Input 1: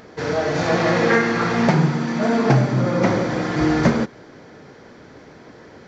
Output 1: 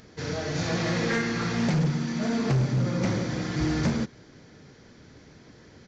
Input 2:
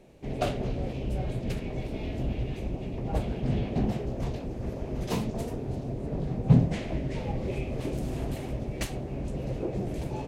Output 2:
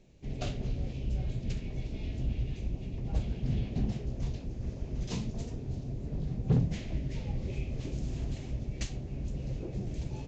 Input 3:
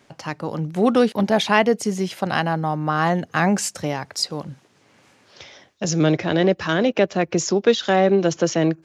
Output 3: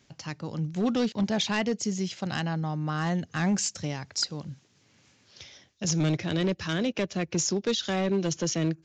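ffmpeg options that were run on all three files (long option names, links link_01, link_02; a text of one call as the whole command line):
ffmpeg -i in.wav -af "equalizer=frequency=770:width=0.31:gain=-14,aresample=16000,asoftclip=type=hard:threshold=-21dB,aresample=44100,volume=1dB" out.wav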